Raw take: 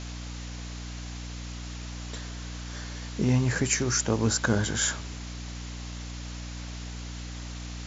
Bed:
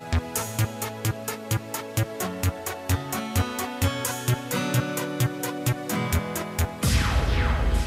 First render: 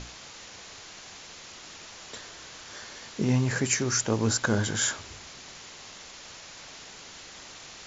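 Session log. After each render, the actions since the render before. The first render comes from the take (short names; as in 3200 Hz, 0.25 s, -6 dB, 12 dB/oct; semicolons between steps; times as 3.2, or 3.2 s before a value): notches 60/120/180/240/300 Hz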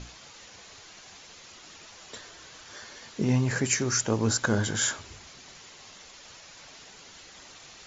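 denoiser 6 dB, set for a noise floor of -46 dBFS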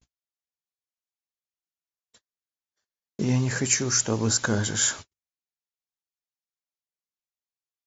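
gate -38 dBFS, range -56 dB; tone controls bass +1 dB, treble +5 dB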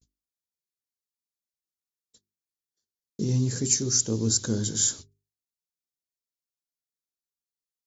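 band shelf 1300 Hz -15.5 dB 2.6 oct; notches 50/100/150/200/250/300/350/400 Hz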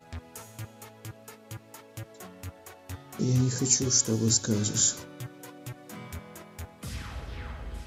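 add bed -16 dB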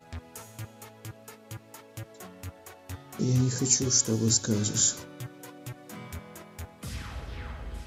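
nothing audible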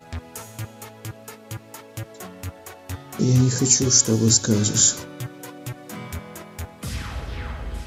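gain +7.5 dB; limiter -3 dBFS, peak gain reduction 2 dB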